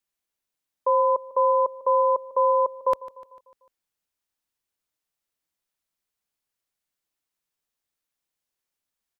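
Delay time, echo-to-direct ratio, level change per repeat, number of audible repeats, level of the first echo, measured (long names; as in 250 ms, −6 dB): 149 ms, −16.5 dB, −5.5 dB, 4, −18.0 dB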